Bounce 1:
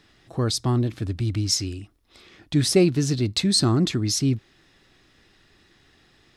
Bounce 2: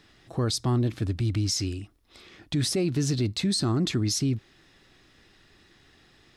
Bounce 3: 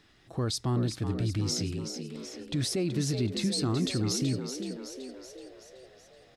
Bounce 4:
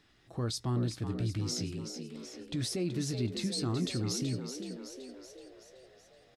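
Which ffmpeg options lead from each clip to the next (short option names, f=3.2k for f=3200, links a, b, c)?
-af "alimiter=limit=-18.5dB:level=0:latency=1:release=61"
-filter_complex "[0:a]asplit=8[a][b][c][d][e][f][g][h];[b]adelay=377,afreqshift=62,volume=-8dB[i];[c]adelay=754,afreqshift=124,volume=-13.2dB[j];[d]adelay=1131,afreqshift=186,volume=-18.4dB[k];[e]adelay=1508,afreqshift=248,volume=-23.6dB[l];[f]adelay=1885,afreqshift=310,volume=-28.8dB[m];[g]adelay=2262,afreqshift=372,volume=-34dB[n];[h]adelay=2639,afreqshift=434,volume=-39.2dB[o];[a][i][j][k][l][m][n][o]amix=inputs=8:normalize=0,volume=-4dB"
-filter_complex "[0:a]asplit=2[a][b];[b]adelay=17,volume=-12dB[c];[a][c]amix=inputs=2:normalize=0,volume=-4.5dB"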